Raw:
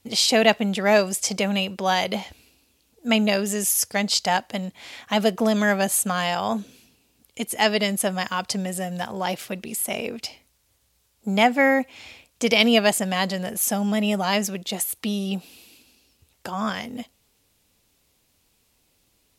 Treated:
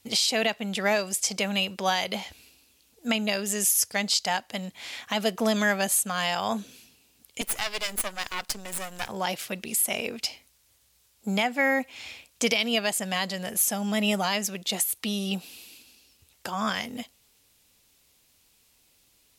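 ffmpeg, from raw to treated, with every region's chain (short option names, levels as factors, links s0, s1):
-filter_complex "[0:a]asettb=1/sr,asplit=3[s0][s1][s2];[s0]atrim=end=7.414[s3];[s1]atrim=start=7.41:end=9.09,asetpts=PTS-STARTPTS,afade=t=in:d=0.004:c=qsin,afade=t=out:st=1.676:d=0.004:c=qsin,highpass=f=220:w=0.5412,highpass=f=220:w=1.3066,equalizer=f=13000:t=o:w=1.4:g=4,aeval=exprs='max(val(0),0)':c=same[s4];[s2]atrim=start=9.086[s5];[s3][s4]acrossfade=d=0.004:c1=hsin:c2=qsin[s6];[s6][s5]acrossfade=d=0.004:c1=qsin:c2=hsin,tiltshelf=f=1200:g=-3.5,alimiter=limit=0.237:level=0:latency=1:release=455"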